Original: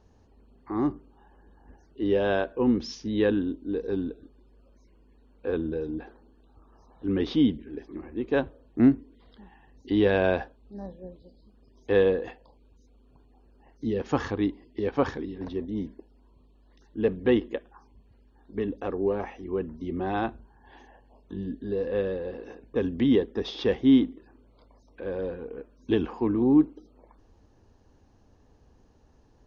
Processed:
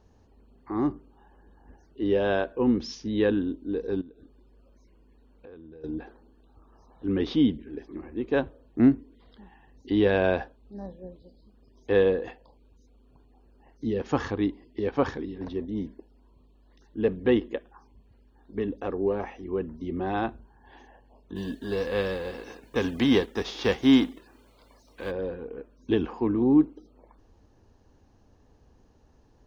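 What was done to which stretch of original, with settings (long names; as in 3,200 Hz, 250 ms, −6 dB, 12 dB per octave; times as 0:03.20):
0:04.01–0:05.84: downward compressor 5 to 1, threshold −46 dBFS
0:21.35–0:25.10: spectral envelope flattened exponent 0.6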